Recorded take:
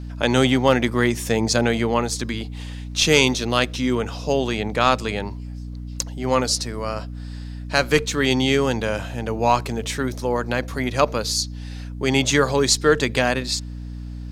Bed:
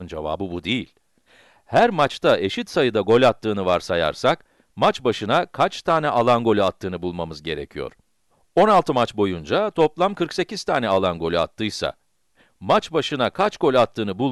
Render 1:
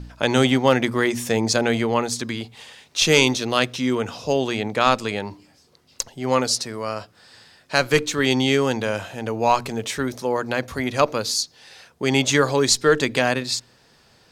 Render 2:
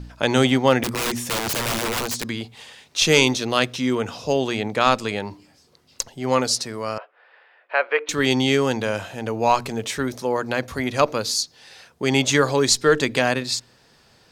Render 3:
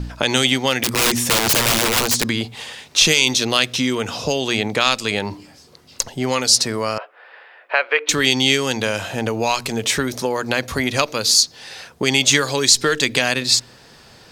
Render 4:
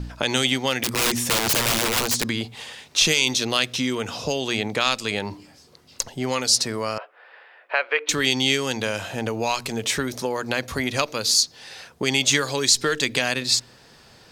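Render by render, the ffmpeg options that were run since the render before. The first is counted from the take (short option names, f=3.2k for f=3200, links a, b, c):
-af "bandreject=f=60:t=h:w=4,bandreject=f=120:t=h:w=4,bandreject=f=180:t=h:w=4,bandreject=f=240:t=h:w=4,bandreject=f=300:t=h:w=4"
-filter_complex "[0:a]asettb=1/sr,asplit=3[a][b][c];[a]atrim=end=0.834[d];[b]atrim=start=0.83:end=2.28,asetpts=PTS-STARTPTS,afade=t=in:d=0.004:c=qsin,afade=t=out:st=1.446:d=0.004:c=qsin,aeval=exprs='(mod(8.41*val(0)+1,2)-1)/8.41':c=same[e];[c]atrim=start=2.276[f];[d][e]acrossfade=d=0.004:c1=hsin:c2=qsin[g];[g][f]acrossfade=d=0.004:c1=qsin:c2=hsin,asettb=1/sr,asplit=3[h][i][j];[h]atrim=end=6.984[k];[i]atrim=start=6.98:end=8.09,asetpts=PTS-STARTPTS,afade=t=in:d=0.004:c=qsin,afade=t=out:st=1.106:d=0.004:c=qsin,asuperpass=centerf=1100:order=8:qfactor=0.51[l];[j]atrim=start=8.086[m];[k][l]acrossfade=d=0.004:c1=hsin:c2=qsin[n];[n][m]acrossfade=d=0.004:c1=qsin:c2=hsin"
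-filter_complex "[0:a]acrossover=split=2200[a][b];[a]acompressor=threshold=-28dB:ratio=6[c];[c][b]amix=inputs=2:normalize=0,alimiter=level_in=9.5dB:limit=-1dB:release=50:level=0:latency=1"
-af "volume=-4.5dB"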